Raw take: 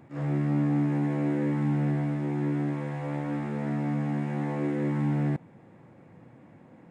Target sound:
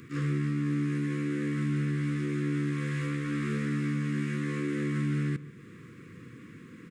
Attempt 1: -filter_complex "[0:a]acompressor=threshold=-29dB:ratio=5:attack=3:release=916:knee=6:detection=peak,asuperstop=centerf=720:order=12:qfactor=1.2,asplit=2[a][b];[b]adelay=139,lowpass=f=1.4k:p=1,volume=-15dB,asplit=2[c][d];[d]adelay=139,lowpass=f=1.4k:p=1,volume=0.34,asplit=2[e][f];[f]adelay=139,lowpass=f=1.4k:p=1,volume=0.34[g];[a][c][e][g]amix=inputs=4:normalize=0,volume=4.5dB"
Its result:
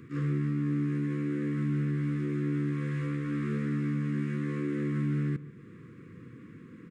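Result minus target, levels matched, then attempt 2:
4000 Hz band -8.0 dB
-filter_complex "[0:a]acompressor=threshold=-29dB:ratio=5:attack=3:release=916:knee=6:detection=peak,asuperstop=centerf=720:order=12:qfactor=1.2,highshelf=f=2.1k:g=11.5,asplit=2[a][b];[b]adelay=139,lowpass=f=1.4k:p=1,volume=-15dB,asplit=2[c][d];[d]adelay=139,lowpass=f=1.4k:p=1,volume=0.34,asplit=2[e][f];[f]adelay=139,lowpass=f=1.4k:p=1,volume=0.34[g];[a][c][e][g]amix=inputs=4:normalize=0,volume=4.5dB"

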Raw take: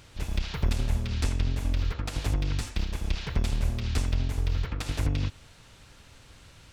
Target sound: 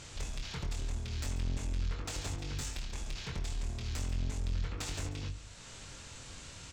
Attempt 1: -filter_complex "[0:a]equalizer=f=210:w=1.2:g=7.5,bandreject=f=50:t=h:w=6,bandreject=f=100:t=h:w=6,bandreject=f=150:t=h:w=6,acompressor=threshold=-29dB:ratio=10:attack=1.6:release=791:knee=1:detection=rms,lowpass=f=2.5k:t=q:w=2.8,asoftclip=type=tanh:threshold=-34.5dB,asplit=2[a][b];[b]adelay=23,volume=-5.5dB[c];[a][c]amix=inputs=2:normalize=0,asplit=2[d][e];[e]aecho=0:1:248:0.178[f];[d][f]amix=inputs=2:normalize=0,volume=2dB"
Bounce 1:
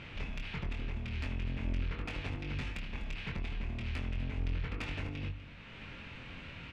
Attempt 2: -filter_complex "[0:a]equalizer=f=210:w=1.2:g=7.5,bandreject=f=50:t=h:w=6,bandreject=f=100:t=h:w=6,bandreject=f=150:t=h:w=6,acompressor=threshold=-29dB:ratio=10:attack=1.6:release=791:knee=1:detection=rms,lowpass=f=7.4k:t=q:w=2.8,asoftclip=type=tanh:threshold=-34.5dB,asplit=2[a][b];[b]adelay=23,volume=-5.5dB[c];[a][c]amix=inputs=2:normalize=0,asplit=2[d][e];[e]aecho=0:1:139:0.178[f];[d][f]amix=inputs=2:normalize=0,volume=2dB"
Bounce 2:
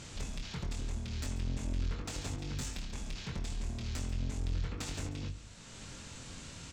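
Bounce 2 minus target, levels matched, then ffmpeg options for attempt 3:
250 Hz band +4.0 dB
-filter_complex "[0:a]bandreject=f=50:t=h:w=6,bandreject=f=100:t=h:w=6,bandreject=f=150:t=h:w=6,acompressor=threshold=-29dB:ratio=10:attack=1.6:release=791:knee=1:detection=rms,lowpass=f=7.4k:t=q:w=2.8,asoftclip=type=tanh:threshold=-34.5dB,asplit=2[a][b];[b]adelay=23,volume=-5.5dB[c];[a][c]amix=inputs=2:normalize=0,asplit=2[d][e];[e]aecho=0:1:139:0.178[f];[d][f]amix=inputs=2:normalize=0,volume=2dB"

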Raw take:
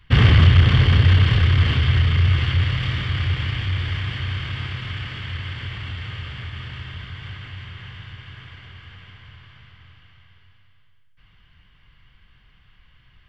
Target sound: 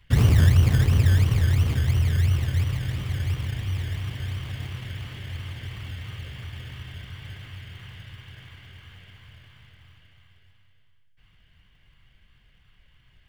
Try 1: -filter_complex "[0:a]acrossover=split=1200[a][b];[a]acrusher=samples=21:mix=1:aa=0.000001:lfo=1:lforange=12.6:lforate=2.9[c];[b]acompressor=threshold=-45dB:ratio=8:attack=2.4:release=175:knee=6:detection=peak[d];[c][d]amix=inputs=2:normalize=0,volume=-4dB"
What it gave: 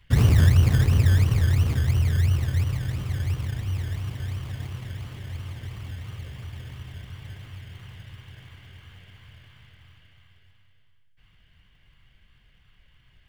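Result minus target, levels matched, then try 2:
compressor: peak gain reduction +7.5 dB
-filter_complex "[0:a]acrossover=split=1200[a][b];[a]acrusher=samples=21:mix=1:aa=0.000001:lfo=1:lforange=12.6:lforate=2.9[c];[b]acompressor=threshold=-36.5dB:ratio=8:attack=2.4:release=175:knee=6:detection=peak[d];[c][d]amix=inputs=2:normalize=0,volume=-4dB"

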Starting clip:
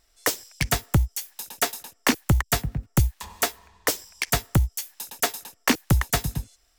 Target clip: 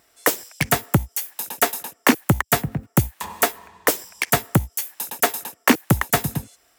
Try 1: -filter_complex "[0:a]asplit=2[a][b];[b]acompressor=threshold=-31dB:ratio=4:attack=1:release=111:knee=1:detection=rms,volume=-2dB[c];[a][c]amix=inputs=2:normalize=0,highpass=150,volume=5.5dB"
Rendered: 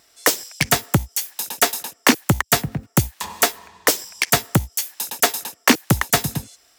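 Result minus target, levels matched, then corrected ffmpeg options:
4000 Hz band +4.0 dB
-filter_complex "[0:a]asplit=2[a][b];[b]acompressor=threshold=-31dB:ratio=4:attack=1:release=111:knee=1:detection=rms,volume=-2dB[c];[a][c]amix=inputs=2:normalize=0,highpass=150,equalizer=f=5k:w=0.81:g=-8,volume=5.5dB"

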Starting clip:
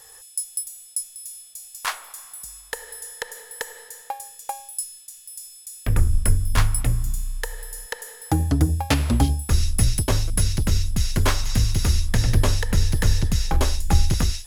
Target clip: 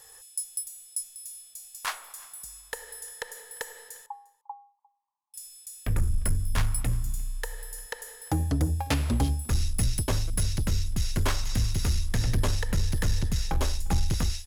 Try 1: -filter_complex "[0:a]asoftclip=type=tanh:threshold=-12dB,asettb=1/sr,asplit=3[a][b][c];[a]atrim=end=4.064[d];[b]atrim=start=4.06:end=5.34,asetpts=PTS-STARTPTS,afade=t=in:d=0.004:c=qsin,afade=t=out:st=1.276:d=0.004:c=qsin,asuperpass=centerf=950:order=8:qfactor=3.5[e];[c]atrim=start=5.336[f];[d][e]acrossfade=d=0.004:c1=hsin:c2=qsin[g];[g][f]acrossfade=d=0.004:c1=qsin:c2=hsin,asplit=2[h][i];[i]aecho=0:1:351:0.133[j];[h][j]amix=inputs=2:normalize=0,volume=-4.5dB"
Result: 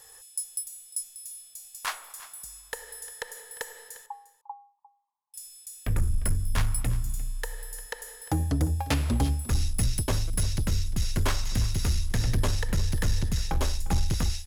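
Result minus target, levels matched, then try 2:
echo-to-direct +7 dB
-filter_complex "[0:a]asoftclip=type=tanh:threshold=-12dB,asettb=1/sr,asplit=3[a][b][c];[a]atrim=end=4.064[d];[b]atrim=start=4.06:end=5.34,asetpts=PTS-STARTPTS,afade=t=in:d=0.004:c=qsin,afade=t=out:st=1.276:d=0.004:c=qsin,asuperpass=centerf=950:order=8:qfactor=3.5[e];[c]atrim=start=5.336[f];[d][e]acrossfade=d=0.004:c1=hsin:c2=qsin[g];[g][f]acrossfade=d=0.004:c1=qsin:c2=hsin,asplit=2[h][i];[i]aecho=0:1:351:0.0596[j];[h][j]amix=inputs=2:normalize=0,volume=-4.5dB"

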